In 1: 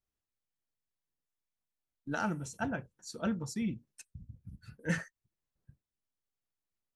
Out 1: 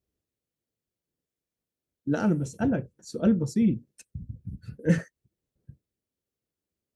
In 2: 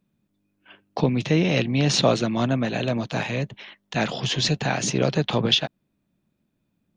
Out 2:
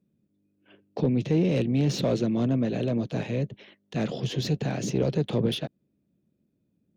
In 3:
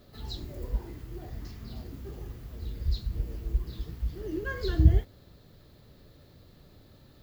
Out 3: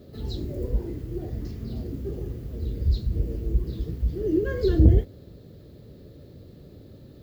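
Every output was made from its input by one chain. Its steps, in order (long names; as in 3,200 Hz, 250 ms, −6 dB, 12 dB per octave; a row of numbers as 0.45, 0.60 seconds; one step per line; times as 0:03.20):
soft clipping −17 dBFS
high-pass filter 53 Hz
low shelf with overshoot 650 Hz +9.5 dB, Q 1.5
loudness normalisation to −27 LKFS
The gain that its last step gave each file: +1.5, −9.5, −0.5 decibels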